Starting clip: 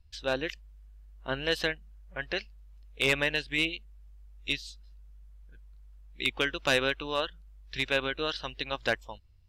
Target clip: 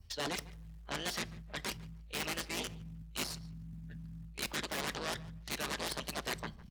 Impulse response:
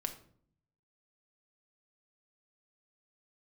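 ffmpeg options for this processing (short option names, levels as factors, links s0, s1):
-filter_complex "[0:a]asubboost=boost=9:cutoff=59,areverse,acompressor=threshold=0.00794:ratio=5,areverse,adynamicequalizer=threshold=0.00112:dfrequency=2800:dqfactor=1.8:tfrequency=2800:tqfactor=1.8:attack=5:release=100:ratio=0.375:range=2.5:mode=cutabove:tftype=bell,asetrate=48000,aresample=44100,aeval=exprs='0.0299*(cos(1*acos(clip(val(0)/0.0299,-1,1)))-cos(1*PI/2))+0.00944*(cos(3*acos(clip(val(0)/0.0299,-1,1)))-cos(3*PI/2))+0.00596*(cos(4*acos(clip(val(0)/0.0299,-1,1)))-cos(4*PI/2))+0.00188*(cos(6*acos(clip(val(0)/0.0299,-1,1)))-cos(6*PI/2))+0.0133*(cos(7*acos(clip(val(0)/0.0299,-1,1)))-cos(7*PI/2))':c=same,asplit=2[s0][s1];[s1]adelay=201,lowpass=f=3000:p=1,volume=0.112,asplit=2[s2][s3];[s3]adelay=201,lowpass=f=3000:p=1,volume=0.2[s4];[s0][s2][s4]amix=inputs=3:normalize=0,asplit=2[s5][s6];[1:a]atrim=start_sample=2205[s7];[s6][s7]afir=irnorm=-1:irlink=0,volume=0.447[s8];[s5][s8]amix=inputs=2:normalize=0,acrossover=split=140[s9][s10];[s9]acompressor=threshold=0.00282:ratio=8[s11];[s11][s10]amix=inputs=2:normalize=0,highpass=f=44:p=1,atempo=1.3,volume=1.19"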